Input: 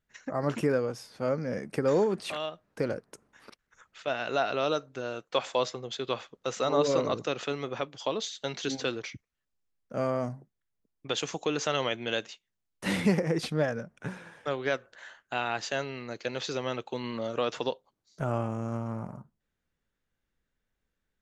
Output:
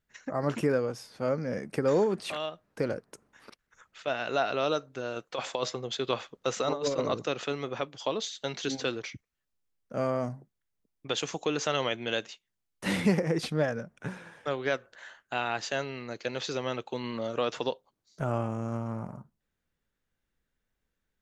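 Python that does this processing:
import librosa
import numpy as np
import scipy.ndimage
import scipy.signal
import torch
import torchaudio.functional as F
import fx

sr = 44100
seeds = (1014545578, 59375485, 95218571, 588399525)

y = fx.over_compress(x, sr, threshold_db=-28.0, ratio=-0.5, at=(5.16, 6.99))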